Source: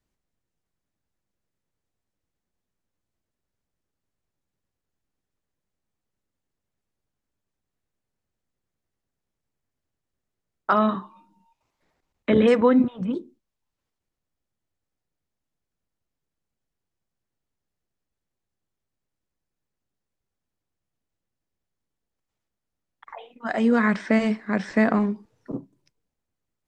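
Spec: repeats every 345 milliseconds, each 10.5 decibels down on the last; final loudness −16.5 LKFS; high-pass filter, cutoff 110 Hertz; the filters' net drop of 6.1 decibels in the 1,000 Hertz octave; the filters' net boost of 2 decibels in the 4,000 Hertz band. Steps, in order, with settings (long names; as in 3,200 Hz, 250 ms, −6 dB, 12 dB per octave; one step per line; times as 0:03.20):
high-pass filter 110 Hz
parametric band 1,000 Hz −8.5 dB
parametric band 4,000 Hz +3.5 dB
repeating echo 345 ms, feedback 30%, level −10.5 dB
level +7 dB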